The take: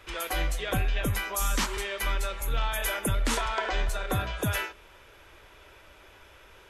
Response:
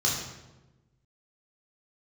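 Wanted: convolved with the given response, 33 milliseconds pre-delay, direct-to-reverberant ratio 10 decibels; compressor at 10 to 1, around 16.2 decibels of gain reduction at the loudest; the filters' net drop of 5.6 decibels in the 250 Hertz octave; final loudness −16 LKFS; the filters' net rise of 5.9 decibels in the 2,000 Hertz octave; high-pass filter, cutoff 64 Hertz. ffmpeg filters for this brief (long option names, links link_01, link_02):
-filter_complex "[0:a]highpass=64,equalizer=frequency=250:width_type=o:gain=-8,equalizer=frequency=2000:width_type=o:gain=7.5,acompressor=threshold=-40dB:ratio=10,asplit=2[link_01][link_02];[1:a]atrim=start_sample=2205,adelay=33[link_03];[link_02][link_03]afir=irnorm=-1:irlink=0,volume=-20dB[link_04];[link_01][link_04]amix=inputs=2:normalize=0,volume=26.5dB"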